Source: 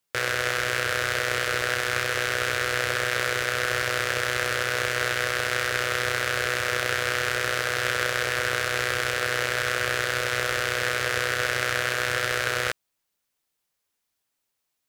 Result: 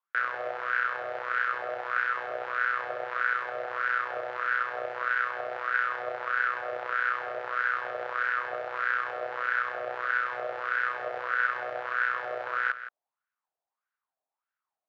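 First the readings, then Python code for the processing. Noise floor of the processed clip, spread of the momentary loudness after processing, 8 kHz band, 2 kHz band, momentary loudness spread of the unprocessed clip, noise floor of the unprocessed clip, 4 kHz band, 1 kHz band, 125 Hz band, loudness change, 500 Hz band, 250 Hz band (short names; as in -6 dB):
under -85 dBFS, 5 LU, under -35 dB, -4.0 dB, 0 LU, -80 dBFS, -20.5 dB, 0.0 dB, under -25 dB, -5.0 dB, -6.5 dB, under -10 dB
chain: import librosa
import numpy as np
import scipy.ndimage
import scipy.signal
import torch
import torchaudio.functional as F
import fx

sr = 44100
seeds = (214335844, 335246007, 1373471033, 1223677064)

y = fx.wah_lfo(x, sr, hz=1.6, low_hz=660.0, high_hz=1500.0, q=5.7)
y = fx.air_absorb(y, sr, metres=140.0)
y = y + 10.0 ** (-12.5 / 20.0) * np.pad(y, (int(168 * sr / 1000.0), 0))[:len(y)]
y = y * librosa.db_to_amplitude(6.5)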